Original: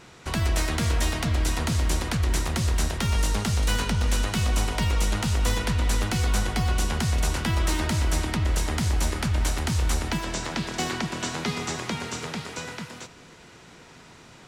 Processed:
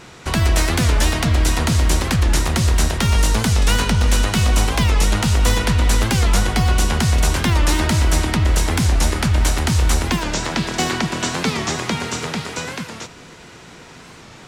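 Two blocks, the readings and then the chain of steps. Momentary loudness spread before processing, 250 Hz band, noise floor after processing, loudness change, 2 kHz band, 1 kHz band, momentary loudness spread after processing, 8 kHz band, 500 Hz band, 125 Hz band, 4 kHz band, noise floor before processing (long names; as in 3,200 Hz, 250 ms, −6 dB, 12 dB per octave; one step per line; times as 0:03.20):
6 LU, +8.0 dB, −41 dBFS, +8.0 dB, +8.0 dB, +8.0 dB, 6 LU, +8.0 dB, +8.0 dB, +8.0 dB, +8.0 dB, −49 dBFS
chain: wow of a warped record 45 rpm, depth 160 cents
level +8 dB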